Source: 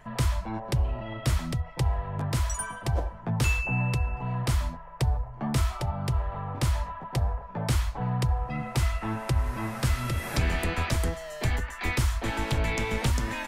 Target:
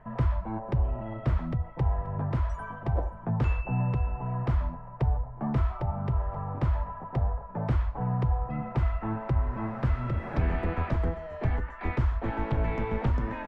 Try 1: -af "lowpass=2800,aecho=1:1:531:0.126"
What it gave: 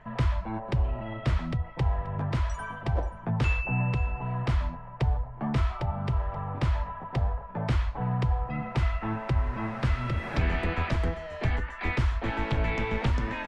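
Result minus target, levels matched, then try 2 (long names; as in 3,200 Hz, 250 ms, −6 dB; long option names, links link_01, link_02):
2,000 Hz band +6.5 dB
-af "lowpass=1300,aecho=1:1:531:0.126"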